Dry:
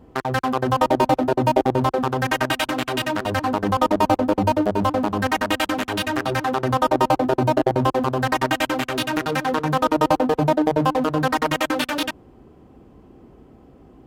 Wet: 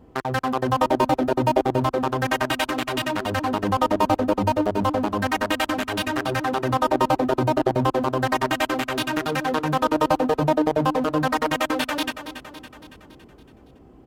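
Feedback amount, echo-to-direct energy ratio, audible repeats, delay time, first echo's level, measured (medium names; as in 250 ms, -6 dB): 56%, -10.5 dB, 5, 280 ms, -12.0 dB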